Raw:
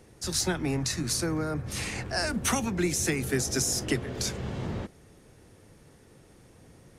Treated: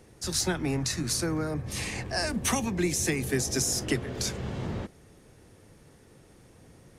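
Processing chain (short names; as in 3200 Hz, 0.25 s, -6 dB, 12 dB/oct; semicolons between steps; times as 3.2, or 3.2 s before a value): 1.47–3.62 notch 1400 Hz, Q 7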